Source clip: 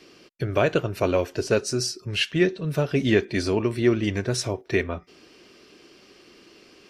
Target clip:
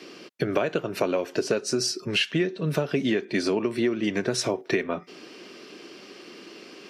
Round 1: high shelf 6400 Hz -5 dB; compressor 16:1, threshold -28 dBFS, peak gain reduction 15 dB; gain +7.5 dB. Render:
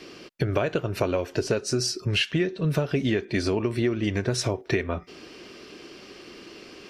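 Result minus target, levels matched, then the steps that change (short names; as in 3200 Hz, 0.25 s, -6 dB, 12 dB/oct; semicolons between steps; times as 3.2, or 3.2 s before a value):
125 Hz band +6.0 dB
add first: HPF 160 Hz 24 dB/oct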